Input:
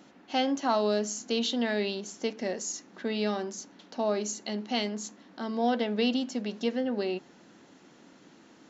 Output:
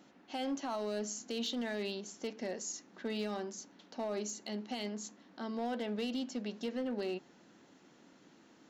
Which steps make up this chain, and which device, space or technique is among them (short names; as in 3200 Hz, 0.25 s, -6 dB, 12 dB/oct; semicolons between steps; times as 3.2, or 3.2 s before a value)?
limiter into clipper (limiter -22 dBFS, peak gain reduction 7.5 dB; hard clip -24.5 dBFS, distortion -23 dB); gain -6 dB